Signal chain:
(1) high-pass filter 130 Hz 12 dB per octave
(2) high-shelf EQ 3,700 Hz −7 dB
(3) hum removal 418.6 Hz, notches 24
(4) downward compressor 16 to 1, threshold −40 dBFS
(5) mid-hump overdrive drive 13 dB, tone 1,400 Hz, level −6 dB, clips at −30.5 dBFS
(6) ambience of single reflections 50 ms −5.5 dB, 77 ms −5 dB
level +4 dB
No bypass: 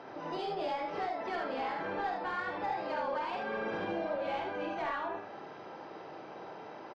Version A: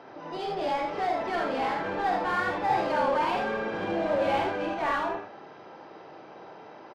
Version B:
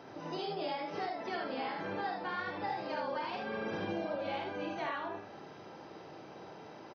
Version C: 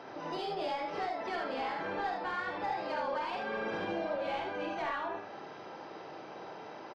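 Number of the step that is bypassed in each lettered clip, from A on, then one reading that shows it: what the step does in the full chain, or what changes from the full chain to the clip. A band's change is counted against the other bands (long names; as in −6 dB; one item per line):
4, average gain reduction 8.0 dB
5, 125 Hz band +4.5 dB
2, 4 kHz band +3.0 dB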